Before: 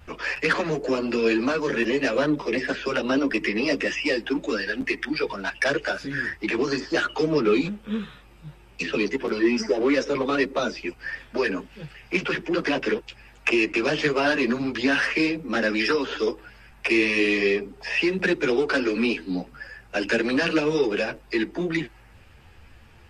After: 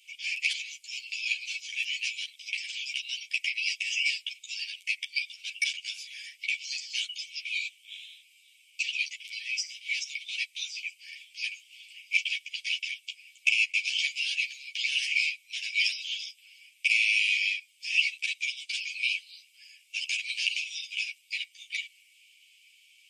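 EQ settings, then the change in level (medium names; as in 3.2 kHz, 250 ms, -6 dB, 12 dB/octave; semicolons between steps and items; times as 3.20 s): rippled Chebyshev high-pass 2.2 kHz, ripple 6 dB; +5.5 dB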